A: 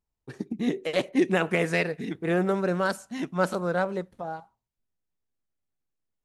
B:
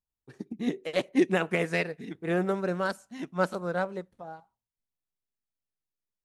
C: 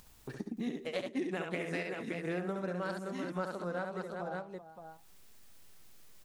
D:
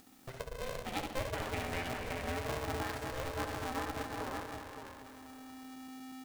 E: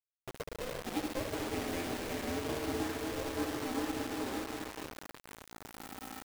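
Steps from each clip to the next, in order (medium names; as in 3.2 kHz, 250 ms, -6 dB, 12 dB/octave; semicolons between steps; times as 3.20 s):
upward expansion 1.5:1, over -36 dBFS
upward compressor, threshold -38 dBFS; on a send: multi-tap echo 68/193/385/571 ms -5.5/-20/-14/-10 dB; on the sum: compression 4:1, threshold -37 dBFS, peak gain reduction 16 dB; trim +1.5 dB
backward echo that repeats 120 ms, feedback 79%, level -8 dB; de-hum 118 Hz, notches 33; polarity switched at an audio rate 260 Hz; trim -2 dB
peaking EQ 320 Hz +13.5 dB 1.1 oct; echo that smears into a reverb 474 ms, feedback 41%, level -11 dB; bit crusher 6-bit; trim -5 dB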